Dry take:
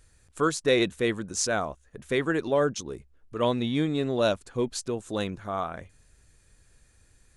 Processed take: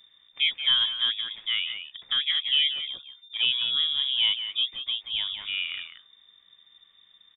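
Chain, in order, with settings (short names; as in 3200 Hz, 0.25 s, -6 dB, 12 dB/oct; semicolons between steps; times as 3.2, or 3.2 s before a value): speakerphone echo 0.18 s, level -8 dB; treble ducked by the level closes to 1600 Hz, closed at -24.5 dBFS; inverted band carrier 3600 Hz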